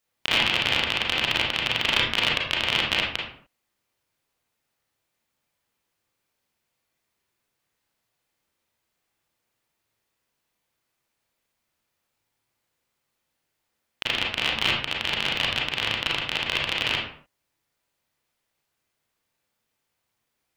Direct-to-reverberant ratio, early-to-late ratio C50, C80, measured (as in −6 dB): −3.0 dB, 3.0 dB, 7.0 dB